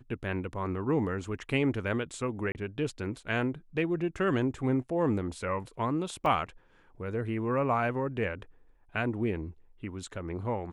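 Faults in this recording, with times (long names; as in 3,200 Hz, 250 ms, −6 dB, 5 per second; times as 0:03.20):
0:02.52–0:02.55: drop-out 29 ms
0:06.26: drop-out 2.6 ms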